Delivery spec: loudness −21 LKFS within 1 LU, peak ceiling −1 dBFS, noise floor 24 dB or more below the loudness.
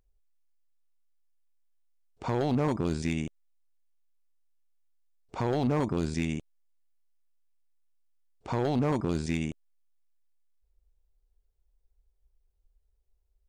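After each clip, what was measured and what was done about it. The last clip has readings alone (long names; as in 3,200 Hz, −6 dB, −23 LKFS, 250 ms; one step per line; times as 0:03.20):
share of clipped samples 0.7%; peaks flattened at −21.0 dBFS; integrated loudness −30.5 LKFS; sample peak −21.0 dBFS; target loudness −21.0 LKFS
→ clipped peaks rebuilt −21 dBFS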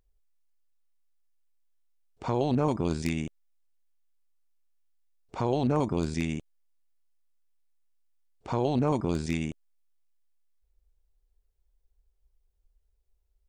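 share of clipped samples 0.0%; integrated loudness −29.5 LKFS; sample peak −12.0 dBFS; target loudness −21.0 LKFS
→ level +8.5 dB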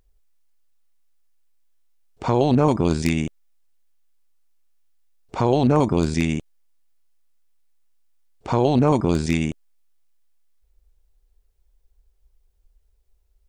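integrated loudness −21.0 LKFS; sample peak −3.5 dBFS; background noise floor −64 dBFS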